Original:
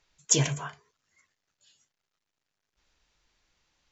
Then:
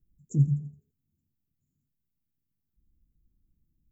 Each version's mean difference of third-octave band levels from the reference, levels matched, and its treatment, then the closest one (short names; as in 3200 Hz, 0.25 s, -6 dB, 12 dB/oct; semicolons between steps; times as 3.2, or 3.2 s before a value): 14.5 dB: inverse Chebyshev band-stop 1100–4000 Hz, stop band 80 dB; dynamic EQ 160 Hz, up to +7 dB, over -41 dBFS, Q 3.5; in parallel at +3 dB: compressor, threshold -39 dBFS, peak gain reduction 19.5 dB; on the sum: thinning echo 84 ms, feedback 48%, high-pass 990 Hz, level -17 dB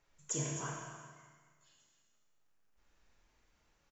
7.5 dB: bell 4100 Hz -9.5 dB 1.7 oct; compressor 5:1, threshold -36 dBFS, peak gain reduction 13.5 dB; on a send: echo 0.261 s -11.5 dB; on the sum: Schroeder reverb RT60 1.5 s, combs from 27 ms, DRR -1 dB; gain -1.5 dB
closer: second